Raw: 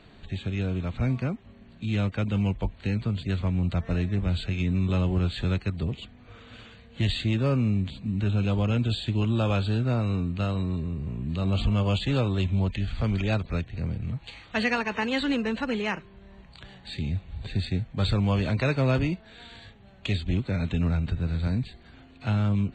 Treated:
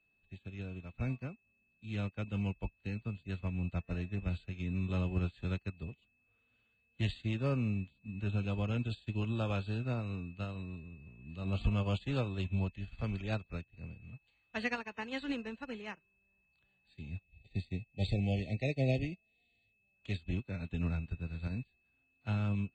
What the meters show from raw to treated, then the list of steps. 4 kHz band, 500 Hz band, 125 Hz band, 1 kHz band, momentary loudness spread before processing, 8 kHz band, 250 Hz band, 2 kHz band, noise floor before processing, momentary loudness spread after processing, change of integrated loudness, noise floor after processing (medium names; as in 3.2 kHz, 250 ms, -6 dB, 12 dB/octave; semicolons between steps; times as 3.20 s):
-13.0 dB, -10.0 dB, -10.0 dB, -11.0 dB, 9 LU, no reading, -10.5 dB, -10.0 dB, -51 dBFS, 14 LU, -10.0 dB, -76 dBFS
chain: whistle 2.6 kHz -41 dBFS; spectral selection erased 17.22–19.95 s, 800–1800 Hz; upward expansion 2.5:1, over -39 dBFS; trim -4 dB